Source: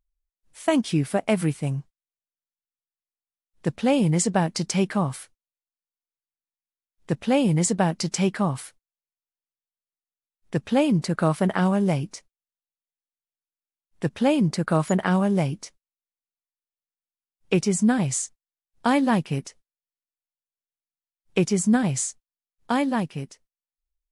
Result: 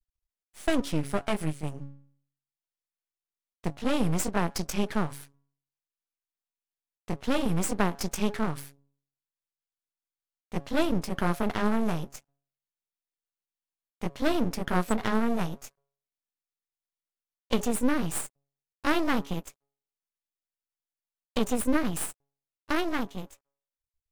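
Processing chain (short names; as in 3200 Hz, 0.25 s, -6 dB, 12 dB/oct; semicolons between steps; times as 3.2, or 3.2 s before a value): gliding pitch shift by +4 st starting unshifted; de-hum 139.5 Hz, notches 7; half-wave rectifier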